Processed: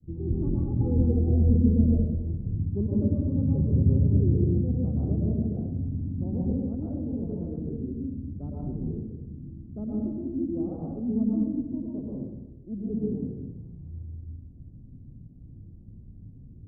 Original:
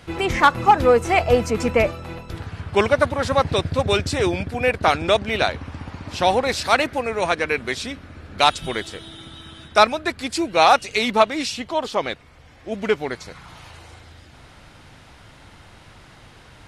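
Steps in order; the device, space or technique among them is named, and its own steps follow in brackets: expander -44 dBFS; next room (LPF 260 Hz 24 dB/oct; reverb RT60 1.0 s, pre-delay 0.105 s, DRR -5 dB); 8.28–8.77 bell 3500 Hz +9.5 dB 1.6 oct; gain -1.5 dB

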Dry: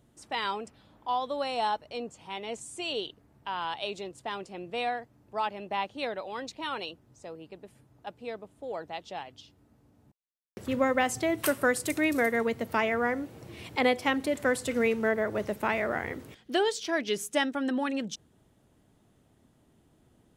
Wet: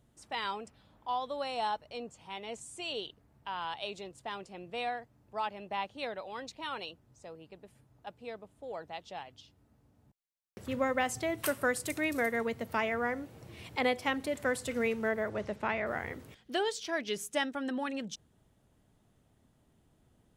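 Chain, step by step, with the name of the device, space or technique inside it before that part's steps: 15.29–15.85 LPF 8700 Hz -> 3800 Hz 12 dB/oct; low shelf boost with a cut just above (low shelf 60 Hz +6 dB; bell 320 Hz -3.5 dB 0.85 oct); gain -4 dB

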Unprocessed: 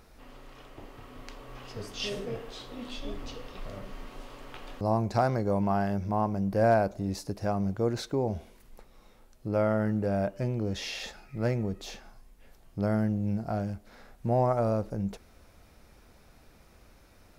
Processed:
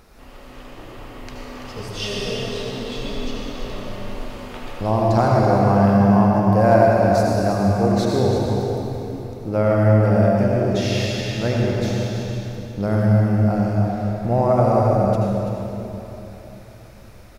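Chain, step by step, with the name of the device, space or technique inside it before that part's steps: cave (echo 0.335 s -9.5 dB; reverb RT60 3.5 s, pre-delay 70 ms, DRR -3 dB); gain +5.5 dB

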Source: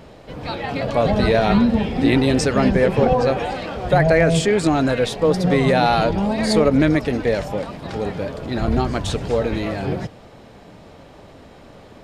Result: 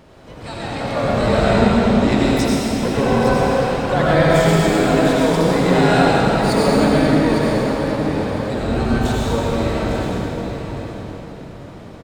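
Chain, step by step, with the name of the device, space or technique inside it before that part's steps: 2.17–2.85 inverse Chebyshev high-pass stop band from 470 Hz, stop band 80 dB; feedback echo 0.857 s, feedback 20%, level -9.5 dB; shimmer-style reverb (harmoniser +12 st -9 dB; reverb RT60 3.5 s, pre-delay 73 ms, DRR -5.5 dB); gain -5.5 dB

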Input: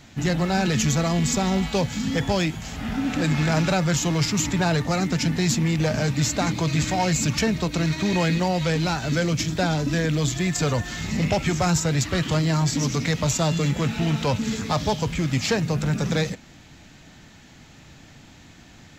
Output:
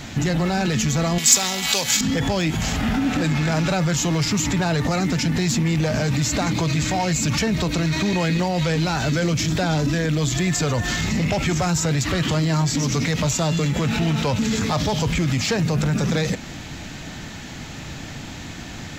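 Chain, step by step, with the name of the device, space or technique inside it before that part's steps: loud club master (compressor 1.5:1, threshold -29 dBFS, peak gain reduction 4.5 dB; hard clip -18 dBFS, distortion -30 dB; maximiser +26.5 dB); 1.18–2.01 tilt +4.5 dB/oct; gain -13 dB

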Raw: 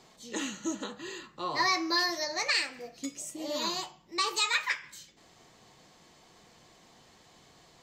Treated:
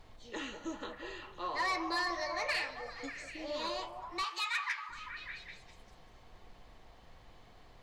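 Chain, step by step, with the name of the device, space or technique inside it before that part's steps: aircraft cabin announcement (BPF 360–3400 Hz; soft clip -24.5 dBFS, distortion -15 dB; brown noise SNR 15 dB); 4.24–4.89 HPF 1000 Hz 24 dB/oct; delay with a stepping band-pass 0.197 s, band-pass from 610 Hz, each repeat 0.7 oct, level -3 dB; gain -2.5 dB

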